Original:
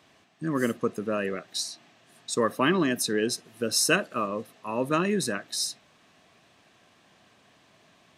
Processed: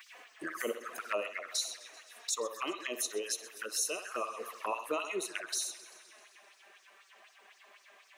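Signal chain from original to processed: band shelf 6500 Hz -12 dB 2.3 oct; in parallel at -3 dB: limiter -19.5 dBFS, peak gain reduction 10 dB; on the sum: LFO high-pass sine 4 Hz 360–5700 Hz; on a send: narrowing echo 63 ms, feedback 49%, band-pass 1200 Hz, level -8 dB; on the sum: compressor 2:1, threshold -38 dBFS, peak gain reduction 13.5 dB; tilt +4 dB/oct; vocal rider within 5 dB 0.5 s; envelope flanger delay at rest 6.2 ms, full sweep at -30 dBFS; warbling echo 0.13 s, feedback 68%, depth 107 cents, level -17.5 dB

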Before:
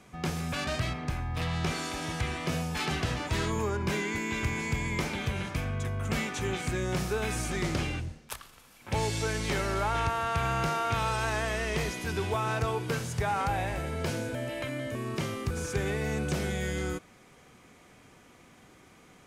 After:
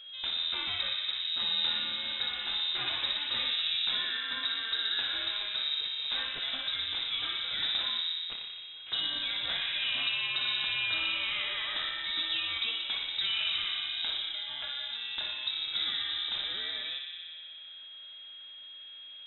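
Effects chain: whine 530 Hz -41 dBFS; analogue delay 60 ms, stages 1024, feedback 84%, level -5.5 dB; inverted band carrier 3800 Hz; gain -5 dB

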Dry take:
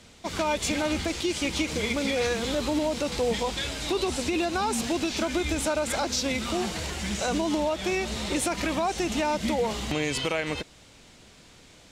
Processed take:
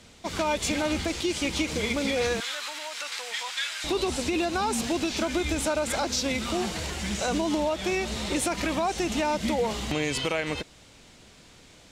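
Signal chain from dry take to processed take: 2.4–3.84 resonant high-pass 1500 Hz, resonance Q 1.6

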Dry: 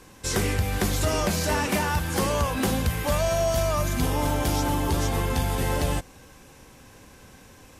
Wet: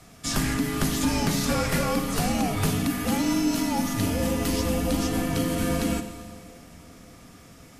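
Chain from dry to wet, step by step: HPF 66 Hz; on a send: band-limited delay 0.573 s, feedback 69%, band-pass 460 Hz, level -21.5 dB; on the sum: frequency shift -360 Hz; Schroeder reverb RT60 2.1 s, combs from 33 ms, DRR 9.5 dB

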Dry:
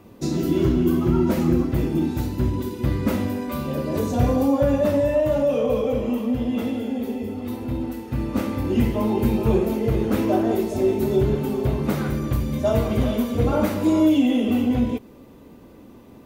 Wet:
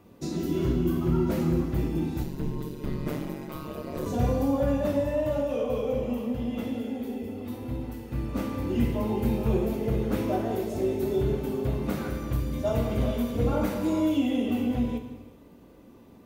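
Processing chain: non-linear reverb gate 0.45 s falling, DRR 6 dB; 2.23–4.06 ring modulator 71 Hz; gain -7 dB

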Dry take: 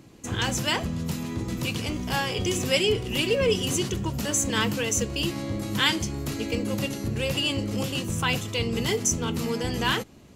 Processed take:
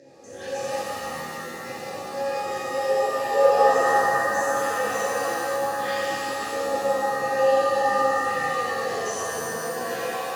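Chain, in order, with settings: upward compressor, threshold -30 dBFS; resonant high shelf 3900 Hz +10 dB, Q 3; 0.65–3.32 compressor 2.5:1, threshold -23 dBFS, peak gain reduction 8.5 dB; vowel filter e; tilt -1.5 dB/oct; notches 60/120/180/240/300/360/420/480/540 Hz; resonator 270 Hz, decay 0.22 s, harmonics all, mix 70%; shimmer reverb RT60 3 s, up +7 st, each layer -2 dB, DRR -11.5 dB; gain +4.5 dB

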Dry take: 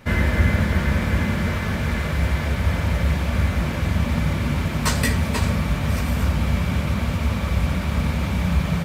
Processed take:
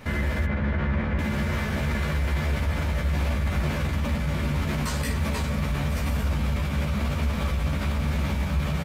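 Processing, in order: 0.45–1.19 LPF 2400 Hz 12 dB/oct; in parallel at +1 dB: negative-ratio compressor -23 dBFS; on the sum: limiter -14.5 dBFS, peak gain reduction 10 dB; doubler 14 ms -3.5 dB; gain -6 dB

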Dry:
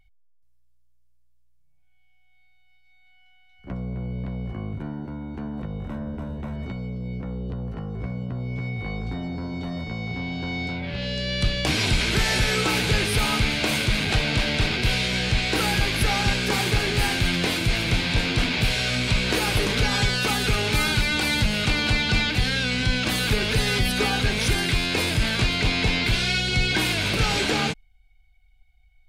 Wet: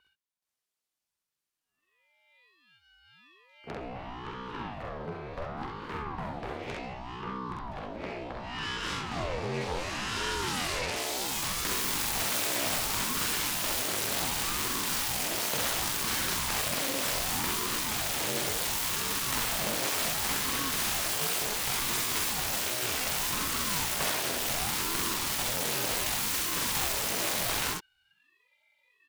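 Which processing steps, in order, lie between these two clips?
self-modulated delay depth 1 ms; HPF 290 Hz 24 dB/oct; in parallel at -0.5 dB: negative-ratio compressor -35 dBFS; on the sum: early reflections 46 ms -3.5 dB, 66 ms -4 dB; ring modulator with a swept carrier 410 Hz, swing 70%, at 0.68 Hz; gain -6.5 dB

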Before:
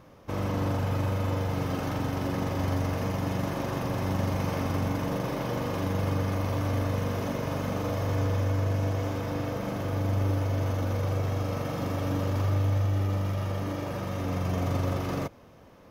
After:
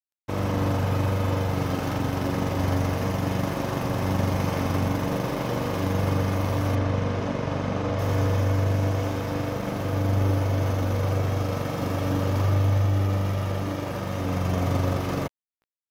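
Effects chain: crossover distortion -43 dBFS; 6.75–7.99 air absorption 88 m; gain +5 dB

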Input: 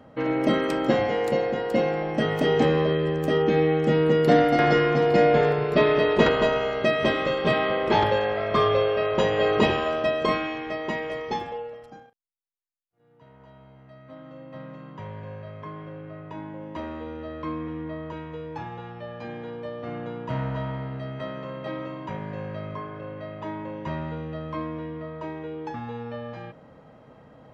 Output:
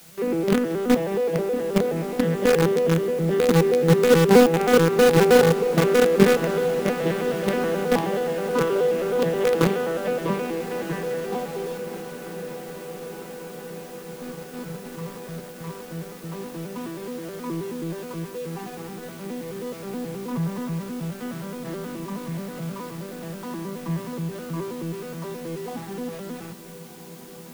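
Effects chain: arpeggiated vocoder minor triad, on E3, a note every 0.106 s; dynamic EQ 470 Hz, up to +5 dB, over -36 dBFS, Q 3.1; in parallel at -12 dB: companded quantiser 2-bit; on the sum: bell 630 Hz -7 dB 0.41 oct; requantised 8-bit, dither triangular; on a send: diffused feedback echo 1.326 s, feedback 73%, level -14 dB; on the sum: gain -1 dB

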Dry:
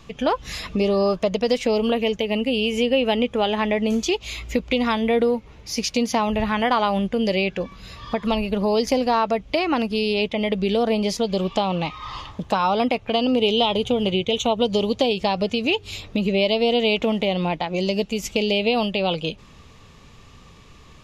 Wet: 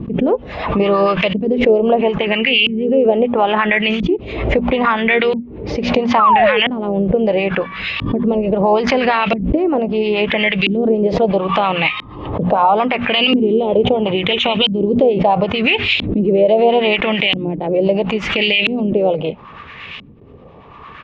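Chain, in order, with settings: bell 3000 Hz +14 dB 1.9 oct; harmoniser -3 st -14 dB; painted sound fall, 6.19–6.6, 410–1400 Hz -13 dBFS; LFO low-pass saw up 0.75 Hz 240–2900 Hz; in parallel at +1 dB: compressor, threshold -28 dBFS, peak gain reduction 23.5 dB; on the sum: harmonic tremolo 8.7 Hz, depth 50%, crossover 890 Hz; HPF 120 Hz 6 dB/oct; notches 60/120/180/240 Hz; gate with hold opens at -37 dBFS; maximiser +6.5 dB; backwards sustainer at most 58 dB/s; gain -3 dB

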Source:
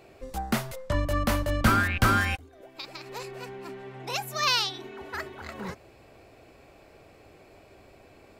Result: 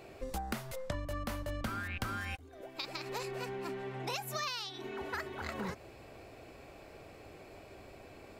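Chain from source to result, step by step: compressor 20:1, threshold -35 dBFS, peak gain reduction 20.5 dB; gain +1 dB

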